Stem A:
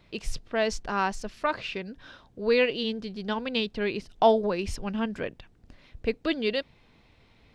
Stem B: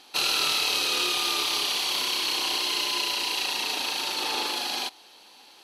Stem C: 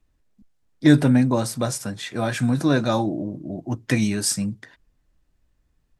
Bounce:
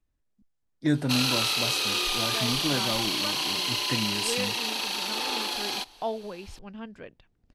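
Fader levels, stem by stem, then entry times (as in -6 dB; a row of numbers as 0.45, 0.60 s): -11.0, -1.5, -10.0 dB; 1.80, 0.95, 0.00 s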